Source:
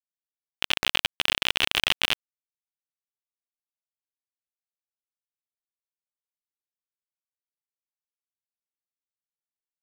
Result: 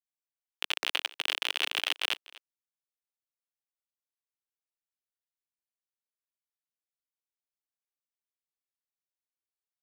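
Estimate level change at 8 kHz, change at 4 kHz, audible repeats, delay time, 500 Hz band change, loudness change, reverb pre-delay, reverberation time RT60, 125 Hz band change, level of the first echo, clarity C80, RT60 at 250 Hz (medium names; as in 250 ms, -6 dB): -6.0 dB, -6.0 dB, 1, 245 ms, -7.0 dB, -6.0 dB, no reverb, no reverb, under -35 dB, -20.5 dB, no reverb, no reverb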